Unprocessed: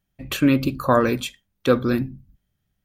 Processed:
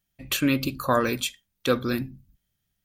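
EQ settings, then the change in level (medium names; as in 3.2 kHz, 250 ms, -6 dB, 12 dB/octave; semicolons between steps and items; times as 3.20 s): treble shelf 2.1 kHz +10.5 dB; -6.0 dB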